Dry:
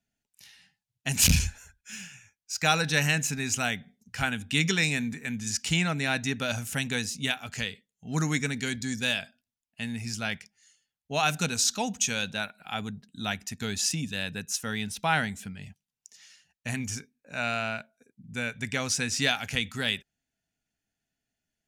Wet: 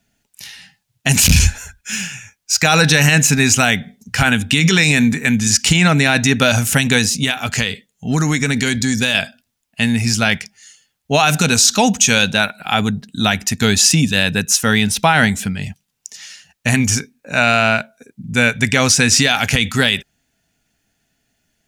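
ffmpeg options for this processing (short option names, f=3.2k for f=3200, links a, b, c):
-filter_complex "[0:a]asettb=1/sr,asplit=3[a][b][c];[a]atrim=end=7.034[d];[b]atrim=start=7.03:end=9.15,asetpts=PTS-STARTPTS,afade=t=in:d=0.004:c=qsin,afade=t=out:st=2.116:d=0.004:c=qsin,acompressor=threshold=-30dB:ratio=6:attack=3.2:release=140:knee=1:detection=peak[e];[c]atrim=start=9.146[f];[d][e]acrossfade=d=0.004:c1=hsin:c2=qsin[g];[g][f]acrossfade=d=0.004:c1=qsin:c2=hsin,alimiter=level_in=19dB:limit=-1dB:release=50:level=0:latency=1,volume=-1dB"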